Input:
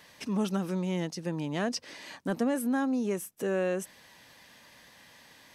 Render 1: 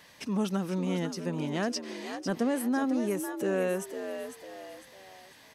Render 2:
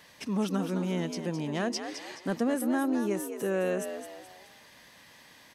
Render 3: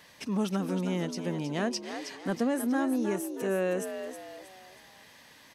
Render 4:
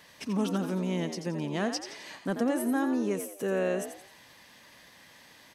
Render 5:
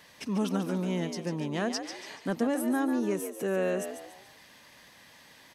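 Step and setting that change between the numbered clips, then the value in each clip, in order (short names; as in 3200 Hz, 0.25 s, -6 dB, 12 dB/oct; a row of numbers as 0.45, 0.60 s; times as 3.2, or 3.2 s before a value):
frequency-shifting echo, time: 501, 212, 317, 86, 143 ms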